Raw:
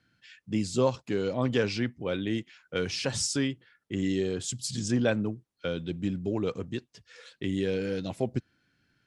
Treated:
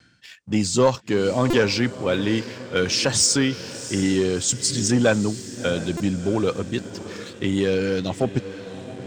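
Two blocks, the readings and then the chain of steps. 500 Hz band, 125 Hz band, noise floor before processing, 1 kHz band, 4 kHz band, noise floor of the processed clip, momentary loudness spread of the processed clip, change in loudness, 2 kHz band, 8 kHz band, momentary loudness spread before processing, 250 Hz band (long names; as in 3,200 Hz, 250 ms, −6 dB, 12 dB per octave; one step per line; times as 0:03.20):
+8.0 dB, +7.0 dB, −78 dBFS, +10.0 dB, +10.5 dB, −44 dBFS, 11 LU, +8.5 dB, +9.5 dB, +13.0 dB, 10 LU, +7.5 dB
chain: Chebyshev low-pass filter 8,900 Hz, order 5
feedback delay with all-pass diffusion 688 ms, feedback 50%, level −14.5 dB
pitch vibrato 1.1 Hz 23 cents
high-shelf EQ 5,100 Hz +9.5 dB
leveller curve on the samples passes 1
dynamic equaliser 1,100 Hz, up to +4 dB, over −51 dBFS, Q 0.84
reversed playback
upward compression, threshold −32 dBFS
reversed playback
buffer that repeats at 0:01.50/0:05.97, samples 128, times 10
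level +3.5 dB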